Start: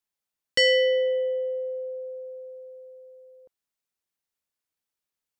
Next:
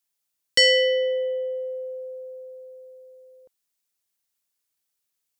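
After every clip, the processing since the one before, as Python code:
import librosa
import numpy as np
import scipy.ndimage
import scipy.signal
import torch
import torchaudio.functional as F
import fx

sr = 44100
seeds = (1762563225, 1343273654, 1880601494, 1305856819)

y = fx.high_shelf(x, sr, hz=3300.0, db=10.0)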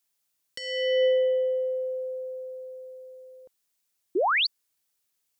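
y = fx.over_compress(x, sr, threshold_db=-23.0, ratio=-0.5)
y = fx.spec_paint(y, sr, seeds[0], shape='rise', start_s=4.15, length_s=0.32, low_hz=320.0, high_hz=4900.0, level_db=-23.0)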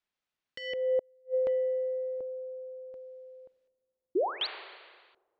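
y = fx.rev_schroeder(x, sr, rt60_s=1.7, comb_ms=30, drr_db=14.5)
y = fx.filter_lfo_lowpass(y, sr, shape='square', hz=0.68, low_hz=620.0, high_hz=2800.0, q=0.79)
y = fx.gate_flip(y, sr, shuts_db=-19.0, range_db=-38)
y = y * 10.0 ** (-2.0 / 20.0)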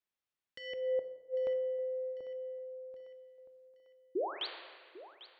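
y = fx.echo_thinned(x, sr, ms=797, feedback_pct=50, hz=280.0, wet_db=-15.5)
y = fx.rev_plate(y, sr, seeds[1], rt60_s=1.2, hf_ratio=0.7, predelay_ms=0, drr_db=9.5)
y = y * 10.0 ** (-6.5 / 20.0)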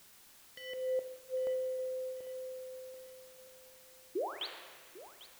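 y = fx.dmg_noise_colour(x, sr, seeds[2], colour='white', level_db=-58.0)
y = y * 10.0 ** (-1.5 / 20.0)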